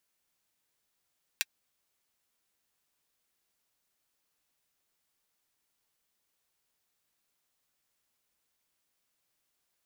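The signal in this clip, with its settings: closed hi-hat, high-pass 2 kHz, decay 0.04 s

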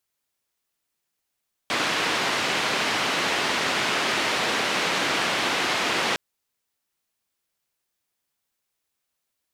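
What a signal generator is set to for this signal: noise band 190–3000 Hz, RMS -24.5 dBFS 4.46 s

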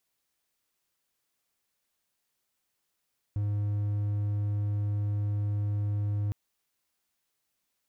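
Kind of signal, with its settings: tone triangle 103 Hz -24.5 dBFS 2.96 s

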